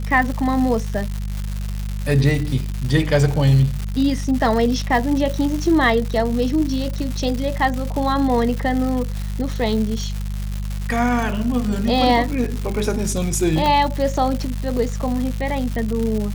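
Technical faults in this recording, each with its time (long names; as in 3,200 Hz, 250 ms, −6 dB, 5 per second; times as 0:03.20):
surface crackle 280 per second −24 dBFS
mains hum 50 Hz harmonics 4 −25 dBFS
0:13.66: click −8 dBFS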